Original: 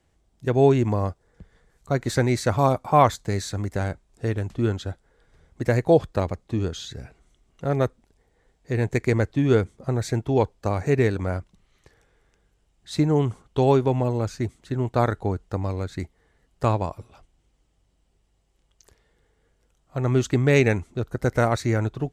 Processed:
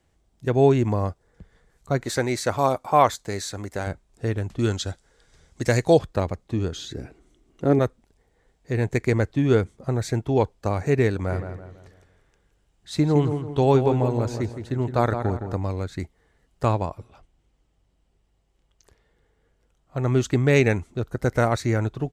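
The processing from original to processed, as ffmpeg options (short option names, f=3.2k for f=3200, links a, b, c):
-filter_complex "[0:a]asettb=1/sr,asplit=3[a][b][c];[a]atrim=end=2.054[d];[b]atrim=start=2.05:end=3.87,asetpts=PTS-STARTPTS,afade=t=in:d=0.004:c=qsin,afade=t=out:st=1.816:d=0.004:c=qsin,bass=f=250:g=-8,treble=f=4k:g=2[e];[c]atrim=start=3.866[f];[d][e]acrossfade=d=0.004:c1=hsin:c2=qsin[g];[g][f]acrossfade=d=0.004:c1=qsin:c2=hsin,asettb=1/sr,asplit=3[h][i][j];[h]atrim=end=4.594[k];[i]atrim=start=4.59:end=5.99,asetpts=PTS-STARTPTS,afade=t=in:d=0.004:c=qsin,afade=t=out:st=1.396:d=0.004:c=qsin,equalizer=f=6.3k:w=0.54:g=12.5[l];[j]atrim=start=5.986[m];[k][l]acrossfade=d=0.004:c1=hsin:c2=qsin[n];[n][m]acrossfade=d=0.004:c1=qsin:c2=hsin,asettb=1/sr,asplit=3[o][p][q];[o]atrim=end=6.734[r];[p]atrim=start=6.73:end=7.79,asetpts=PTS-STARTPTS,afade=t=in:d=0.004:c=qsin,afade=t=out:st=1.056:d=0.004:c=qsin,equalizer=f=320:w=1.6:g=13[s];[q]atrim=start=7.786[t];[r][s]acrossfade=d=0.004:c1=hsin:c2=qsin[u];[u][t]acrossfade=d=0.004:c1=qsin:c2=hsin,asplit=3[v][w][x];[v]afade=t=out:st=11.29:d=0.02[y];[w]asplit=2[z][aa];[aa]adelay=165,lowpass=f=3k:p=1,volume=-8dB,asplit=2[ab][ac];[ac]adelay=165,lowpass=f=3k:p=1,volume=0.41,asplit=2[ad][ae];[ae]adelay=165,lowpass=f=3k:p=1,volume=0.41,asplit=2[af][ag];[ag]adelay=165,lowpass=f=3k:p=1,volume=0.41,asplit=2[ah][ai];[ai]adelay=165,lowpass=f=3k:p=1,volume=0.41[aj];[z][ab][ad][af][ah][aj]amix=inputs=6:normalize=0,afade=t=in:st=11.29:d=0.02,afade=t=out:st=15.57:d=0.02[ak];[x]afade=t=in:st=15.57:d=0.02[al];[y][ak][al]amix=inputs=3:normalize=0,asettb=1/sr,asplit=3[am][an][ao];[am]atrim=end=16.854[ap];[an]atrim=start=16.85:end=19.97,asetpts=PTS-STARTPTS,afade=t=in:d=0.004:c=qsin,afade=t=out:st=3.116:d=0.004:c=qsin,highshelf=f=4.9k:g=-6.5[aq];[ao]atrim=start=19.966[ar];[ap][aq]acrossfade=d=0.004:c1=hsin:c2=qsin[as];[as][ar]acrossfade=d=0.004:c1=qsin:c2=hsin"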